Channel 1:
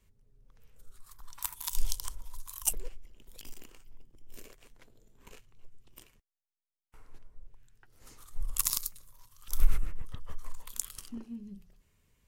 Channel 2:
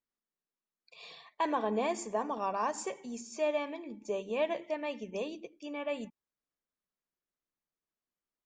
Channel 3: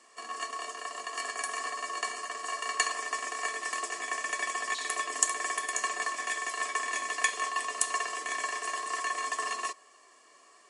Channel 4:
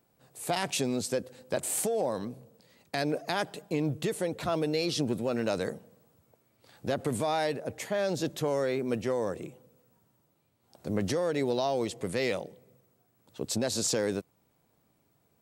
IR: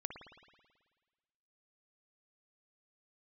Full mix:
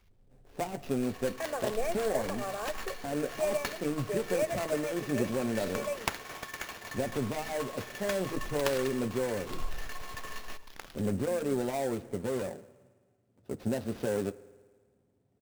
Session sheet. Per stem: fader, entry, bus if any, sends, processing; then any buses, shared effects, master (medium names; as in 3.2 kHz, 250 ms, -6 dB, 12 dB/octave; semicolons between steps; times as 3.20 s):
-15.5 dB, 0.00 s, no send, power-law waveshaper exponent 0.7
+1.0 dB, 0.00 s, no send, static phaser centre 970 Hz, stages 6
-11.0 dB, 0.85 s, send -4.5 dB, treble shelf 8.1 kHz +6 dB; step-sequenced notch 4.3 Hz 770–1900 Hz
-1.0 dB, 0.10 s, send -10 dB, median filter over 41 samples; comb of notches 160 Hz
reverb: on, RT60 1.5 s, pre-delay 54 ms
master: sample-rate reducer 8.5 kHz, jitter 20%